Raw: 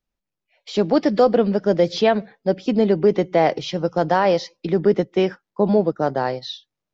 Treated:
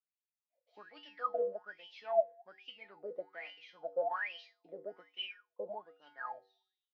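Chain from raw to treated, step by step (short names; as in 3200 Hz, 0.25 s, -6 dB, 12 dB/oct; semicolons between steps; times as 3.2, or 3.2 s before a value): resonator 97 Hz, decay 0.42 s, harmonics odd, mix 90%; wah 1.2 Hz 520–3000 Hz, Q 21; de-hum 383.4 Hz, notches 2; gain +10 dB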